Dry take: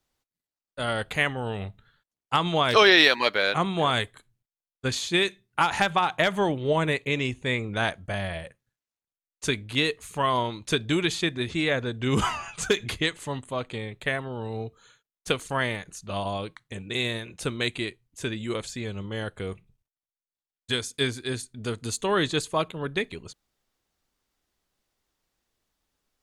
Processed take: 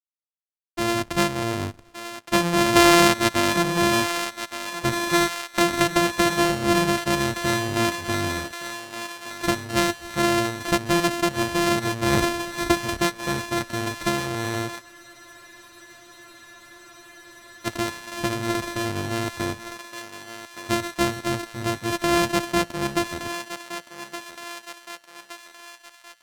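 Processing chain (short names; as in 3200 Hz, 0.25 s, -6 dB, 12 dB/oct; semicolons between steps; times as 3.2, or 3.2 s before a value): sample sorter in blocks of 128 samples; in parallel at +1 dB: compressor, threshold -32 dBFS, peak gain reduction 18 dB; on the sum: bit-crush 10-bit; on a send: thinning echo 1.168 s, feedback 59%, high-pass 700 Hz, level -8 dB; on the sum: spectral freeze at 14.84, 2.81 s; decimation joined by straight lines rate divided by 2×; gain +1 dB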